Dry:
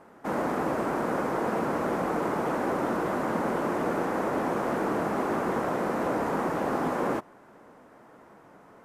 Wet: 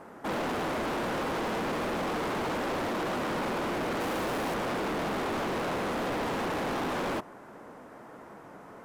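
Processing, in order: overloaded stage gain 35 dB; 4–4.54 high shelf 8000 Hz +8 dB; gain +5 dB

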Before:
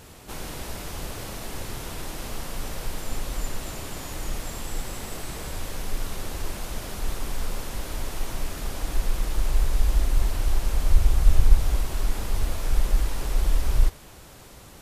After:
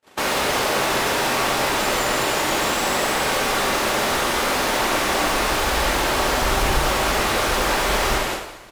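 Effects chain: low shelf 110 Hz -10 dB; tempo 1.7×; gate -45 dBFS, range -57 dB; overdrive pedal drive 37 dB, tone 2100 Hz, clips at -11.5 dBFS; two-slope reverb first 0.78 s, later 2.4 s, from -18 dB, DRR 1.5 dB

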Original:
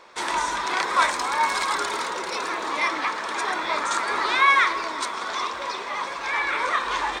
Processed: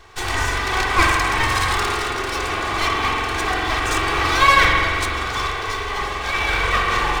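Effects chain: minimum comb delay 2.6 ms; resonant low shelf 120 Hz +7 dB, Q 1.5; spring tank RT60 2 s, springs 44 ms, chirp 40 ms, DRR -0.5 dB; gain +3.5 dB

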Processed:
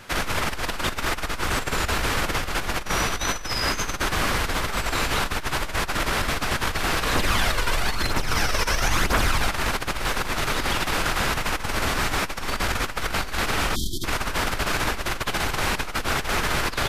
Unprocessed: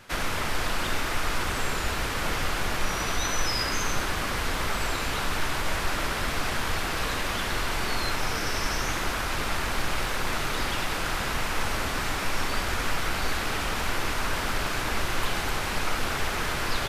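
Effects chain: 13.75–14.04 spectral delete 390–3100 Hz; negative-ratio compressor -28 dBFS, ratio -0.5; 7.15–9.48 phaser 1 Hz, delay 2.2 ms, feedback 46%; gain +4 dB

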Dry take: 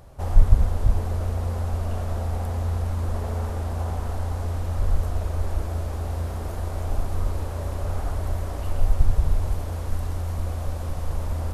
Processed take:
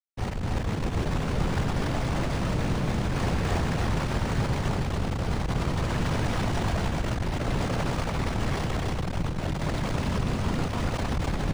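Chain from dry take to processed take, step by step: compressor 2:1, threshold -24 dBFS, peak gain reduction 10 dB; limiter -21.5 dBFS, peak gain reduction 9.5 dB; AGC gain up to 14 dB; soft clip -13 dBFS, distortion -15 dB; flange 0.64 Hz, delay 6.9 ms, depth 4.3 ms, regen -29%; Schmitt trigger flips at -41 dBFS; whisperiser; on a send: loudspeakers at several distances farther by 32 m -11 dB, 98 m -1 dB; on the sum: decimation joined by straight lines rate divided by 3×; gain -7.5 dB

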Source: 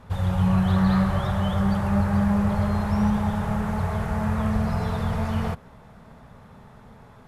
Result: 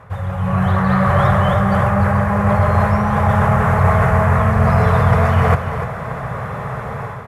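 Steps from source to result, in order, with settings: HPF 52 Hz; reverse; compressor 6:1, threshold -32 dBFS, peak gain reduction 14.5 dB; reverse; notch 900 Hz, Q 7; AGC gain up to 11.5 dB; in parallel at -5.5 dB: soft clip -23.5 dBFS, distortion -11 dB; on the sum: graphic EQ 125/250/500/1000/2000/4000 Hz +10/-9/+7/+9/+8/-6 dB; echo 0.296 s -10 dB; gain +2 dB

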